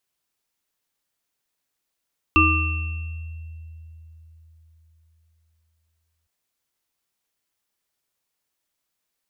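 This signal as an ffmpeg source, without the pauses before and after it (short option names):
-f lavfi -i "aevalsrc='0.119*pow(10,-3*t/4.25)*sin(2*PI*80.7*t)+0.141*pow(10,-3*t/0.91)*sin(2*PI*316*t)+0.168*pow(10,-3*t/0.91)*sin(2*PI*1190*t)+0.188*pow(10,-3*t/1.6)*sin(2*PI*2700*t)':d=3.91:s=44100"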